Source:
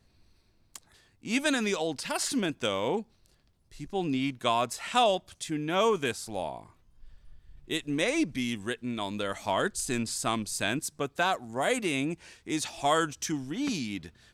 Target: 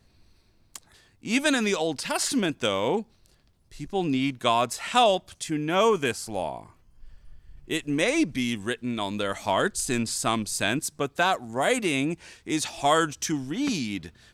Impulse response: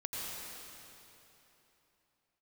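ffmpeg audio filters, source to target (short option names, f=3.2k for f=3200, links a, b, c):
-filter_complex "[0:a]asettb=1/sr,asplit=3[a][b][c];[a]atrim=end=5.434[d];[b]atrim=start=5.43:end=8.03,asetpts=PTS-STARTPTS,afade=t=in:d=0.004:c=qsin,afade=t=out:st=2.596:d=0.004:c=qsin,bandreject=f=3.7k:w=7.8[e];[c]atrim=start=8.026[f];[d][e]acrossfade=d=0.004:c1=hsin:c2=qsin[g];[g][f]acrossfade=d=0.004:c1=qsin:c2=hsin,volume=4dB"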